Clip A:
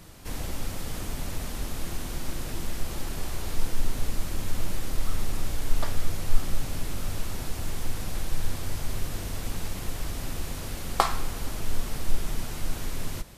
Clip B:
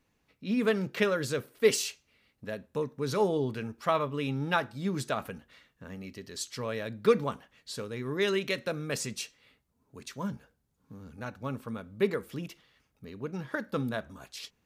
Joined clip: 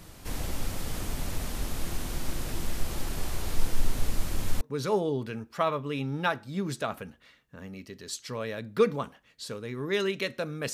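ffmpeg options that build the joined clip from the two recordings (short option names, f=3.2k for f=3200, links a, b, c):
-filter_complex "[0:a]apad=whole_dur=10.73,atrim=end=10.73,atrim=end=4.612[a];[1:a]atrim=start=2.888:end=9.01[b];[a][b]acrossfade=d=0.004:c1=hsin:c2=hsin"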